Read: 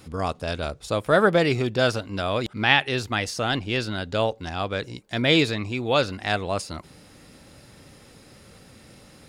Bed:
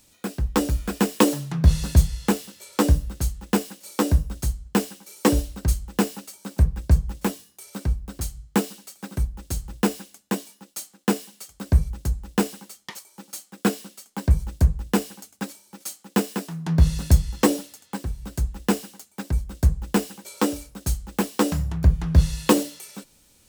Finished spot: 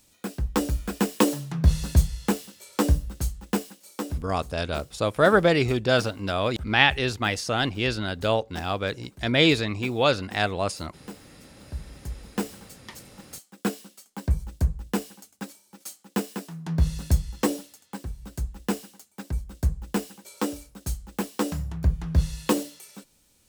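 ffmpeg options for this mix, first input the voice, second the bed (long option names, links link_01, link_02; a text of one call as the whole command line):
ffmpeg -i stem1.wav -i stem2.wav -filter_complex "[0:a]adelay=4100,volume=0dB[link_01];[1:a]volume=11dB,afade=type=out:start_time=3.38:duration=1:silence=0.149624,afade=type=in:start_time=11.7:duration=0.85:silence=0.199526[link_02];[link_01][link_02]amix=inputs=2:normalize=0" out.wav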